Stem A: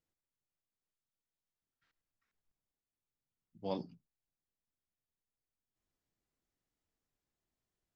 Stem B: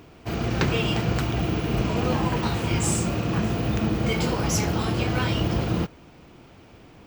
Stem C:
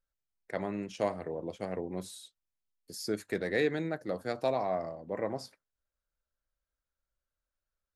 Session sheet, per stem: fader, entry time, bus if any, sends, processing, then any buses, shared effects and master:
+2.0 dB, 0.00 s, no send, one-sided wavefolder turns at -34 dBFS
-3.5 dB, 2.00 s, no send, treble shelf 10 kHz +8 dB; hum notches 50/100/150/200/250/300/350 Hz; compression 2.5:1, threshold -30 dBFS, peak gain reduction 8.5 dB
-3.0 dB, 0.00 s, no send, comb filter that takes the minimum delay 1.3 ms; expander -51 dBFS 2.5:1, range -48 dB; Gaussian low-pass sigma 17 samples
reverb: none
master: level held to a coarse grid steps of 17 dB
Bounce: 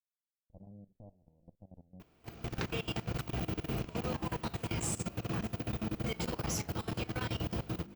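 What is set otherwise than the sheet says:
stem A: muted; stem C -3.0 dB -> -11.0 dB

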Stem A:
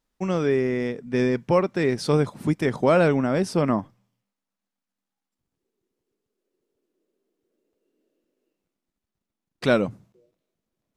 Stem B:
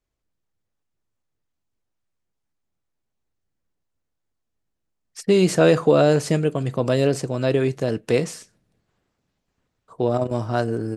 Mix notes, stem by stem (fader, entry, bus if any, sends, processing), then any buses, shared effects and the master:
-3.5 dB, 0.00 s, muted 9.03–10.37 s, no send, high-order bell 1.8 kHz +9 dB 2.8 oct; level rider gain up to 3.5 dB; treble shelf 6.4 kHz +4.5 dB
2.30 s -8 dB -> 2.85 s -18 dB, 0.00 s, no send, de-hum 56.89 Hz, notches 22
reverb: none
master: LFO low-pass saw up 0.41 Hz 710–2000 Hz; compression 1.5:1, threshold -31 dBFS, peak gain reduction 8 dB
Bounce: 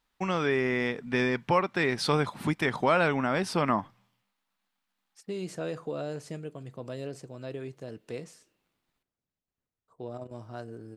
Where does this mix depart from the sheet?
stem B: missing de-hum 56.89 Hz, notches 22; master: missing LFO low-pass saw up 0.41 Hz 710–2000 Hz

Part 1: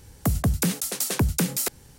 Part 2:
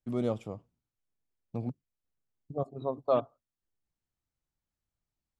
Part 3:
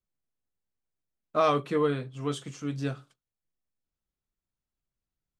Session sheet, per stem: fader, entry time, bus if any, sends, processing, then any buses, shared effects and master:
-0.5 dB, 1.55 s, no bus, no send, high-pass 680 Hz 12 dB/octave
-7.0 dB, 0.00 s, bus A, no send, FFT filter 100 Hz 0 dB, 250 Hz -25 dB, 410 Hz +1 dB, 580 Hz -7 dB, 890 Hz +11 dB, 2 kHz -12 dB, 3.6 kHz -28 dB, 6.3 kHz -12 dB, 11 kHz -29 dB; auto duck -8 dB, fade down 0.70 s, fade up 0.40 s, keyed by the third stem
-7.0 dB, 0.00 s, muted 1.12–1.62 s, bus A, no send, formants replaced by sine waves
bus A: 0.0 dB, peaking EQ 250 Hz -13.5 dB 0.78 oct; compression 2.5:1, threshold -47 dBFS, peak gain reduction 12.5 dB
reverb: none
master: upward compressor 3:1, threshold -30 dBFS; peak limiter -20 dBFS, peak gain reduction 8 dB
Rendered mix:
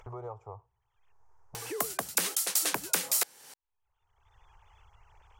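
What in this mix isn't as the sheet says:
stem 2 -7.0 dB -> -16.5 dB; master: missing peak limiter -20 dBFS, peak gain reduction 8 dB

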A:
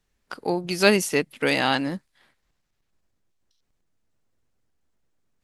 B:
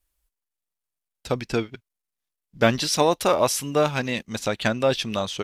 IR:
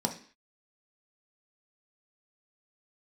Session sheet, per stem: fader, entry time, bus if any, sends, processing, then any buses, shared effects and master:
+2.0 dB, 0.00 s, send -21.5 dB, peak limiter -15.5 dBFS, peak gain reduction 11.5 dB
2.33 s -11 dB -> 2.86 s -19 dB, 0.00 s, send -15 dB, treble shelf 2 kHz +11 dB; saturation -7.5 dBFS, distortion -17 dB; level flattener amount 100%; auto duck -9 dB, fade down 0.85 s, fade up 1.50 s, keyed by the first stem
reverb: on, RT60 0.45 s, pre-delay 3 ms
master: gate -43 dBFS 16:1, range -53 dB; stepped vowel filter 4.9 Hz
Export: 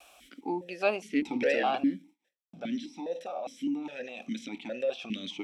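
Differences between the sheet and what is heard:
stem A: missing peak limiter -15.5 dBFS, peak gain reduction 11.5 dB; stem B -11.0 dB -> -2.5 dB

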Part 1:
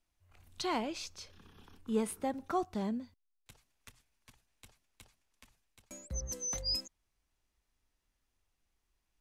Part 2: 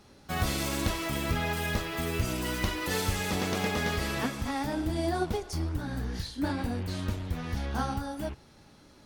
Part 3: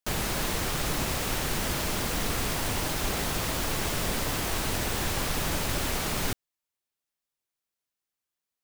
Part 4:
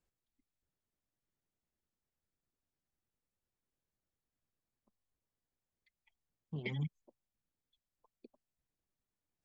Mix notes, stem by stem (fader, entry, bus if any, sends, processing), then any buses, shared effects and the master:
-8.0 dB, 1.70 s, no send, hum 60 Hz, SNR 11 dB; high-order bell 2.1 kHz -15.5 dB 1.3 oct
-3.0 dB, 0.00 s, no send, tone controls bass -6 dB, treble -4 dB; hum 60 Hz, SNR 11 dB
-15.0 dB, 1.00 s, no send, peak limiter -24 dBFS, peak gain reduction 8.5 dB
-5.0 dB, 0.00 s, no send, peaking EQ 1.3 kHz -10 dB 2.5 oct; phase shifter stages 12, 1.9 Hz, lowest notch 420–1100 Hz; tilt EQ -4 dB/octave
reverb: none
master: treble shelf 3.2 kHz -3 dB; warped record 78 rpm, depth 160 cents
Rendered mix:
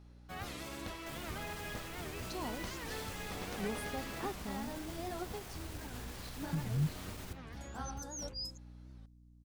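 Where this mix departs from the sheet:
stem 2 -3.0 dB -> -11.5 dB; master: missing treble shelf 3.2 kHz -3 dB

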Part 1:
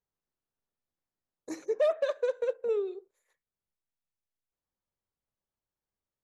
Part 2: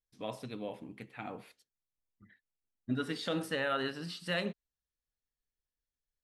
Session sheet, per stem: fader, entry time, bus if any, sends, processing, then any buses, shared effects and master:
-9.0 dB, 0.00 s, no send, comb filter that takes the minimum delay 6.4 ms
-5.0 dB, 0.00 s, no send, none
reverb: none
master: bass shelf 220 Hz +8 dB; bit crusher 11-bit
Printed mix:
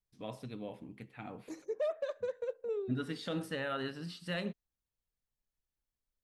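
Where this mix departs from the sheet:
stem 1: missing comb filter that takes the minimum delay 6.4 ms; master: missing bit crusher 11-bit

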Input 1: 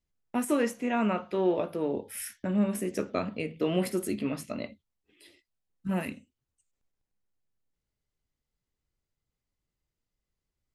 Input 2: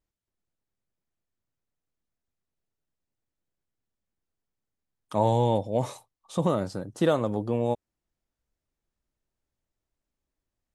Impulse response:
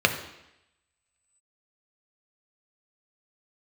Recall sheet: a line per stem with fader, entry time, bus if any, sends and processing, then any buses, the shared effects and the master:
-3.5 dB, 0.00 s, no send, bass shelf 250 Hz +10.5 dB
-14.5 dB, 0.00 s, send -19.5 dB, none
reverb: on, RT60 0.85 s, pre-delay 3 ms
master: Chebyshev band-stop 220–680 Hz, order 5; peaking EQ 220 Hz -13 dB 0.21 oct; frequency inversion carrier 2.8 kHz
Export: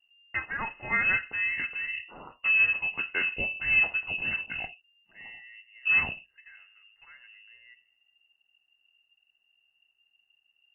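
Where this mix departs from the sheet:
stem 1 -3.5 dB -> +4.0 dB; stem 2 -14.5 dB -> -23.5 dB

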